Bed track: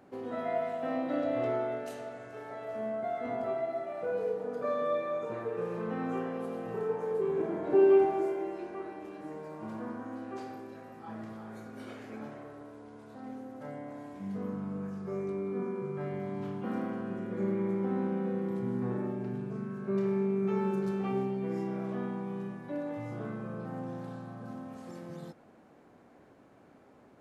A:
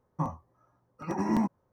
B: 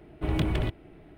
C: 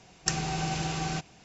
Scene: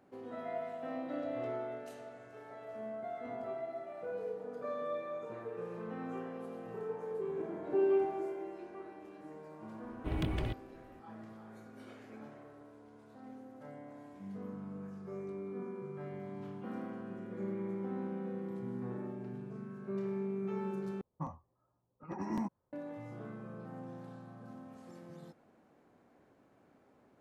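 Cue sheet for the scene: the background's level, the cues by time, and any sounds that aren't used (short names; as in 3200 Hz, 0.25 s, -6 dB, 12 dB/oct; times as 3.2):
bed track -7.5 dB
9.83 add B -8 dB
21.01 replace with A -9.5 dB + low-pass opened by the level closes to 910 Hz, open at -23 dBFS
not used: C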